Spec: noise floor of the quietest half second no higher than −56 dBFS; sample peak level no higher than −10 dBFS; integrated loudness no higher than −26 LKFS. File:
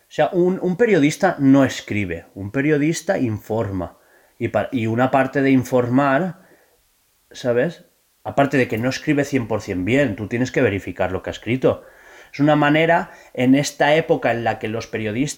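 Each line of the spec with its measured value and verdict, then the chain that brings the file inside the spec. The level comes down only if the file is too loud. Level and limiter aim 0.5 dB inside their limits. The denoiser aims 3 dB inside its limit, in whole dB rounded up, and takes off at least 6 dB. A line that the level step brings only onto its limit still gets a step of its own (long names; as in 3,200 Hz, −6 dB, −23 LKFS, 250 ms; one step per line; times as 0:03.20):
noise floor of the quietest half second −62 dBFS: in spec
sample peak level −5.0 dBFS: out of spec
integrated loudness −19.5 LKFS: out of spec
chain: level −7 dB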